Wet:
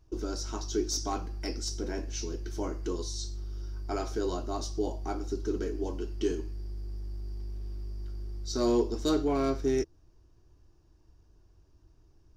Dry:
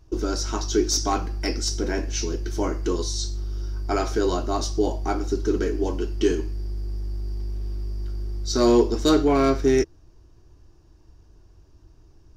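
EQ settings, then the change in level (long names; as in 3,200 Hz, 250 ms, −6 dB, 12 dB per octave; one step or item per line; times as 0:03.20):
dynamic equaliser 1,900 Hz, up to −4 dB, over −40 dBFS, Q 1
−8.5 dB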